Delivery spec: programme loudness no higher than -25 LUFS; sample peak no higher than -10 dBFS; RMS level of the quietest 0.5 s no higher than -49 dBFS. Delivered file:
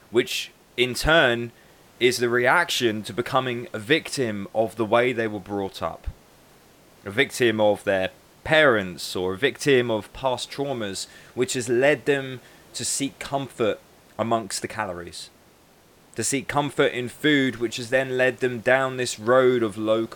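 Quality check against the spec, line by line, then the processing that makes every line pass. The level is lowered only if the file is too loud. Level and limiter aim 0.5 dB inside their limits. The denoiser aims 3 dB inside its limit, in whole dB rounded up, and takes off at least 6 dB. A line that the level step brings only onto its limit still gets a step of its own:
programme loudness -23.0 LUFS: fail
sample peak -5.0 dBFS: fail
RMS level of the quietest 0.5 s -55 dBFS: pass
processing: trim -2.5 dB; peak limiter -10.5 dBFS

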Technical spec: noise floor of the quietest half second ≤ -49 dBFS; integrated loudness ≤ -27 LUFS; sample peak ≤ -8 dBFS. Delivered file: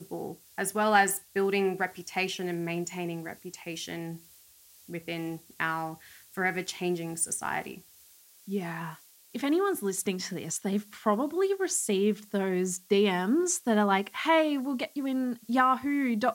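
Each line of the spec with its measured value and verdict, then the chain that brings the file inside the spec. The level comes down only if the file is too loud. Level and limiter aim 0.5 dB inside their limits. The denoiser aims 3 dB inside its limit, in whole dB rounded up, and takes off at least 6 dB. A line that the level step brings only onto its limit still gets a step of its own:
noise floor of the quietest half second -57 dBFS: pass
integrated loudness -29.0 LUFS: pass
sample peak -11.0 dBFS: pass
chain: none needed

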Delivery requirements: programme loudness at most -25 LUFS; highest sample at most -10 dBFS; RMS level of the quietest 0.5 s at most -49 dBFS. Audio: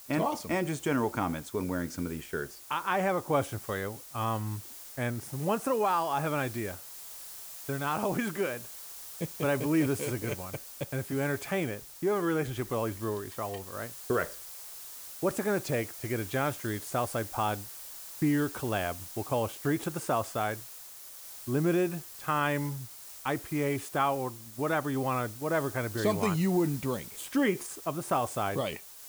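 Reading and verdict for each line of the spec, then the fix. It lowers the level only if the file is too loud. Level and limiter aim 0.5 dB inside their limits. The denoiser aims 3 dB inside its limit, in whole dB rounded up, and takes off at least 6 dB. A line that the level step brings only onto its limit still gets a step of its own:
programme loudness -32.0 LUFS: pass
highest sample -14.5 dBFS: pass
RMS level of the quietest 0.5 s -47 dBFS: fail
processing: noise reduction 6 dB, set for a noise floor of -47 dBFS

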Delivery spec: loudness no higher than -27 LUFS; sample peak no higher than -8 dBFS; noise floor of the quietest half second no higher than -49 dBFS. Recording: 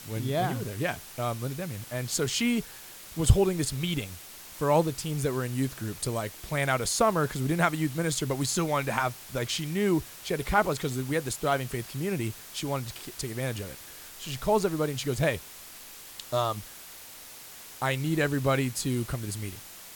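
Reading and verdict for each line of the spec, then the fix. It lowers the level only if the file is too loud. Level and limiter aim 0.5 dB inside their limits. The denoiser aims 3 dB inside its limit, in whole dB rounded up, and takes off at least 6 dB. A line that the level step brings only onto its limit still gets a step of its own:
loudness -29.0 LUFS: pass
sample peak -6.0 dBFS: fail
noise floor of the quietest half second -46 dBFS: fail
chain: noise reduction 6 dB, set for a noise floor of -46 dBFS; peak limiter -8.5 dBFS

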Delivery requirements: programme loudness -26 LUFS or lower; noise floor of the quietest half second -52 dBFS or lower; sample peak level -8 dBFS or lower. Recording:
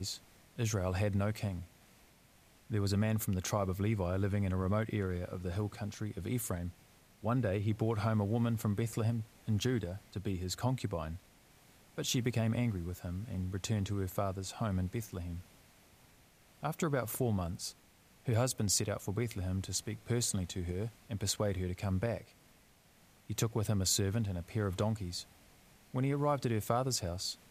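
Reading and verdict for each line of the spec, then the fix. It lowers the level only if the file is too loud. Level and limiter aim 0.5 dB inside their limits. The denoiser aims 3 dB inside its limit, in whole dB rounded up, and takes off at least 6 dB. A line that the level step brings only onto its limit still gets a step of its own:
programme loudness -35.5 LUFS: pass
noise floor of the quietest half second -64 dBFS: pass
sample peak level -17.0 dBFS: pass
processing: none needed

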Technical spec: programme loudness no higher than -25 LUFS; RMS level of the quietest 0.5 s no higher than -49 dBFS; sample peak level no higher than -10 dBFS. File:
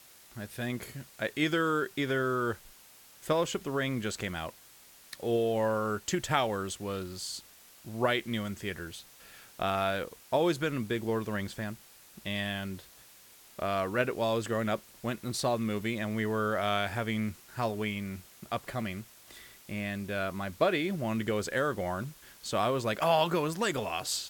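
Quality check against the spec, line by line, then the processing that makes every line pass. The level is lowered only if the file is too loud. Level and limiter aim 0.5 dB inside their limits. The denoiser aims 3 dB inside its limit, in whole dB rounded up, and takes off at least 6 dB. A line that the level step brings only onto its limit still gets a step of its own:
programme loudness -32.0 LUFS: pass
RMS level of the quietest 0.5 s -56 dBFS: pass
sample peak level -10.5 dBFS: pass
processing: none needed

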